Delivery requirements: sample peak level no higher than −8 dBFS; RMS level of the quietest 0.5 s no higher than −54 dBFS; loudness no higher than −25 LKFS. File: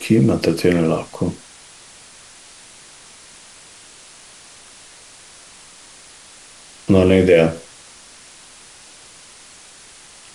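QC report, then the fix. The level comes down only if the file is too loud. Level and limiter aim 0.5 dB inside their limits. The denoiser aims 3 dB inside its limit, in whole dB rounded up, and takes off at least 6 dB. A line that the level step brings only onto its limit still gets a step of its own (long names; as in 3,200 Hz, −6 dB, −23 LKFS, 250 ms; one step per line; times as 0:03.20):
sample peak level −2.0 dBFS: out of spec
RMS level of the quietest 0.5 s −44 dBFS: out of spec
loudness −16.0 LKFS: out of spec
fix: broadband denoise 6 dB, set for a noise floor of −44 dBFS
level −9.5 dB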